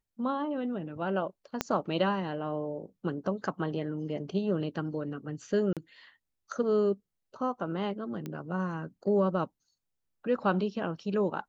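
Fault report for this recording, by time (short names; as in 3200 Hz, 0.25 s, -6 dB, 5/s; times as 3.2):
1.61 pop -12 dBFS
5.73–5.77 gap 37 ms
8.26 pop -24 dBFS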